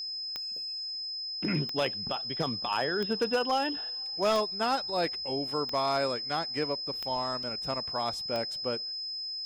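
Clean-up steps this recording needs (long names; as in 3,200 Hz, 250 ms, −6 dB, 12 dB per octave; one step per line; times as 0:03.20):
clipped peaks rebuilt −20.5 dBFS
click removal
notch filter 5,100 Hz, Q 30
repair the gap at 0:07.43, 2.7 ms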